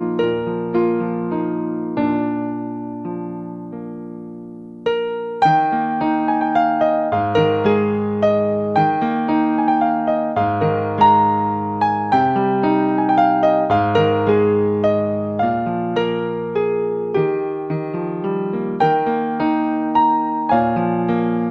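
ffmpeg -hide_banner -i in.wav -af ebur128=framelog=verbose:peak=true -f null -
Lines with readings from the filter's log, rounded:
Integrated loudness:
  I:         -18.3 LUFS
  Threshold: -28.5 LUFS
Loudness range:
  LRA:         6.3 LU
  Threshold: -38.5 LUFS
  LRA low:   -22.7 LUFS
  LRA high:  -16.3 LUFS
True peak:
  Peak:       -2.2 dBFS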